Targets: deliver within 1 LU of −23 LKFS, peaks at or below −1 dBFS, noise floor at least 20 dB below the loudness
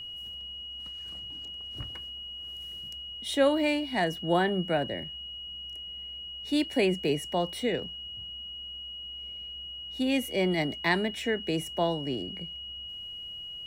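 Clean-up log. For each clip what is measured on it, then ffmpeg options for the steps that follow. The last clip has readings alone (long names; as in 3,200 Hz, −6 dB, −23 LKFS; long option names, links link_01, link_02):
interfering tone 2,900 Hz; level of the tone −38 dBFS; integrated loudness −31.0 LKFS; sample peak −12.5 dBFS; target loudness −23.0 LKFS
→ -af "bandreject=frequency=2900:width=30"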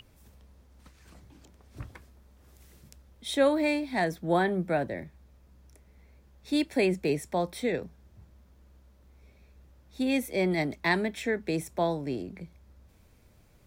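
interfering tone none found; integrated loudness −29.0 LKFS; sample peak −12.5 dBFS; target loudness −23.0 LKFS
→ -af "volume=6dB"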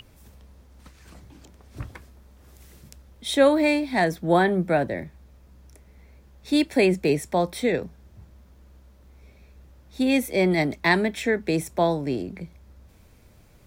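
integrated loudness −23.0 LKFS; sample peak −6.5 dBFS; background noise floor −54 dBFS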